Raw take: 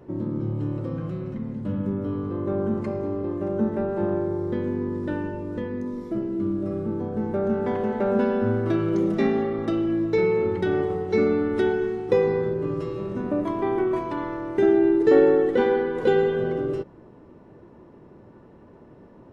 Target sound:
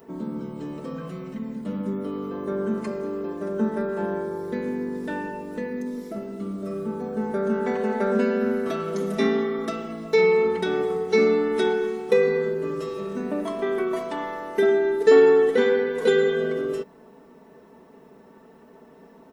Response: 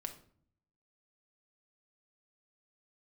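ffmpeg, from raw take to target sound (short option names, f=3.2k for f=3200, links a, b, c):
-af "aemphasis=mode=production:type=bsi,aecho=1:1:4.5:0.87"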